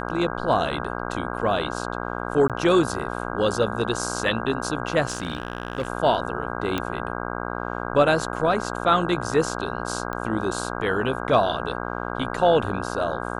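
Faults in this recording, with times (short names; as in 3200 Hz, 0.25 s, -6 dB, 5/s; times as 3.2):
buzz 60 Hz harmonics 27 -30 dBFS
2.48–2.5 gap 17 ms
5.07–5.88 clipped -21 dBFS
6.78 pop -11 dBFS
10.13 pop -17 dBFS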